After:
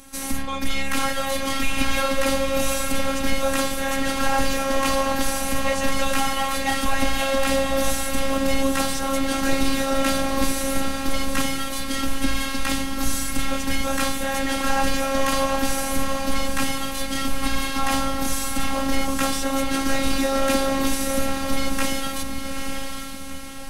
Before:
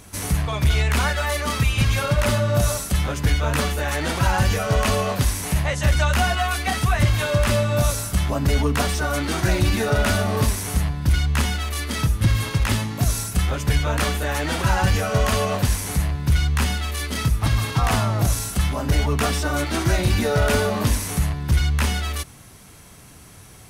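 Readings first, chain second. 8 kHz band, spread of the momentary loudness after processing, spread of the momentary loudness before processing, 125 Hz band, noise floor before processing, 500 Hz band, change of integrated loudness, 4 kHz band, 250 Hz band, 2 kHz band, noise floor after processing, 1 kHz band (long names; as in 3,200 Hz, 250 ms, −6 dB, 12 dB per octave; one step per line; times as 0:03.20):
+1.0 dB, 5 LU, 4 LU, −16.0 dB, −45 dBFS, +0.5 dB, −2.5 dB, +1.0 dB, +2.0 dB, −0.5 dB, −28 dBFS, +1.0 dB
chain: feedback delay with all-pass diffusion 867 ms, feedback 46%, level −5 dB
phases set to zero 270 Hz
level +1.5 dB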